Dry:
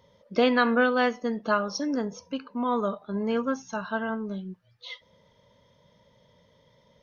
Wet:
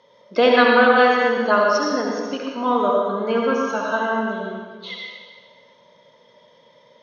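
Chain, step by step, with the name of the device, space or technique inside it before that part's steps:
supermarket ceiling speaker (band-pass filter 330–5,300 Hz; convolution reverb RT60 1.6 s, pre-delay 64 ms, DRR −2 dB)
level +6.5 dB

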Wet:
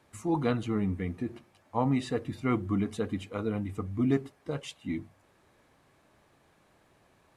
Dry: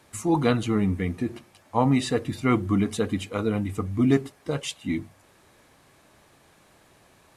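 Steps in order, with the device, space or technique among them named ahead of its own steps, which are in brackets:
behind a face mask (high-shelf EQ 3,400 Hz −7.5 dB)
level −6 dB

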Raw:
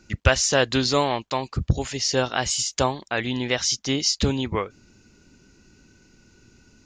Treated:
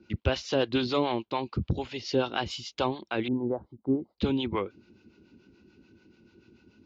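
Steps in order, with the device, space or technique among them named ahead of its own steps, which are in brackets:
0:03.28–0:04.18: inverse Chebyshev low-pass filter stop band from 2,400 Hz, stop band 50 dB
guitar amplifier with harmonic tremolo (two-band tremolo in antiphase 6.9 Hz, depth 70%, crossover 570 Hz; soft clipping −13 dBFS, distortion −17 dB; loudspeaker in its box 85–3,900 Hz, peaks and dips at 140 Hz −4 dB, 220 Hz +3 dB, 340 Hz +7 dB, 660 Hz −4 dB, 1,200 Hz −3 dB, 1,800 Hz −9 dB)

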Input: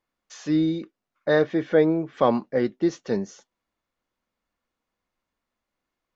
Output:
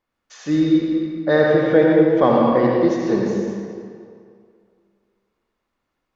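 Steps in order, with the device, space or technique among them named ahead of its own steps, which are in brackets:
swimming-pool hall (convolution reverb RT60 2.3 s, pre-delay 65 ms, DRR −2.5 dB; high-shelf EQ 5,500 Hz −7 dB)
level +3 dB

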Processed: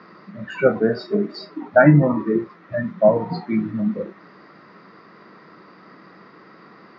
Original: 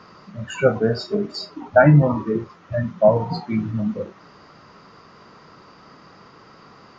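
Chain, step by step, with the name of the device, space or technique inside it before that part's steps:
0:01.77–0:02.20: bass and treble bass +2 dB, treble −6 dB
kitchen radio (loudspeaker in its box 180–4,200 Hz, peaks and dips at 190 Hz +6 dB, 330 Hz +6 dB, 860 Hz −3 dB, 1,900 Hz +6 dB, 3,000 Hz −7 dB)

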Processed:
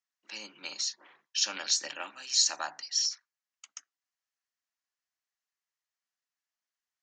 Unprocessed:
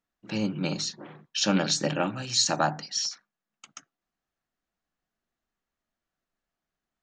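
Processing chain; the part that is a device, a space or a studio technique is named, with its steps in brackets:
television speaker (loudspeaker in its box 180–6,600 Hz, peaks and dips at 180 Hz −8 dB, 1,000 Hz +5 dB, 1,900 Hz +4 dB, 3,700 Hz −4 dB)
first difference
level +4.5 dB

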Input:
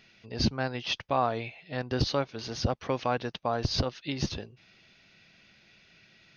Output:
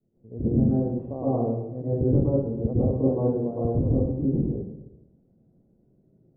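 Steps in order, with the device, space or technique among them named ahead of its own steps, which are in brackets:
downward expander −55 dBFS
next room (low-pass filter 490 Hz 24 dB per octave; convolution reverb RT60 0.90 s, pre-delay 100 ms, DRR −8.5 dB)

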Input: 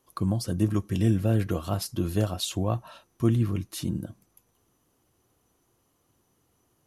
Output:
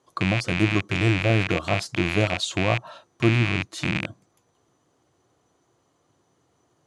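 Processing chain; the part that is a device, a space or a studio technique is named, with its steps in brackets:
0:00.88–0:01.30: parametric band 210 Hz −14.5 dB 0.21 octaves
car door speaker with a rattle (loose part that buzzes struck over −33 dBFS, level −16 dBFS; loudspeaker in its box 110–7,500 Hz, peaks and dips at 220 Hz −6 dB, 660 Hz +3 dB, 2,700 Hz −5 dB, 5,400 Hz −5 dB)
level +5 dB

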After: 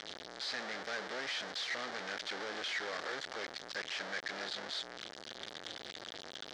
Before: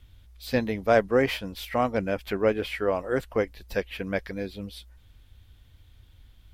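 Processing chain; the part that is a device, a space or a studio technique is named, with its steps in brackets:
guitar amp tone stack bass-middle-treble 6-0-2
home computer beeper (sign of each sample alone; loudspeaker in its box 600–5,300 Hz, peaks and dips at 1,000 Hz −6 dB, 1,700 Hz +4 dB, 2,600 Hz −8 dB)
level +17 dB

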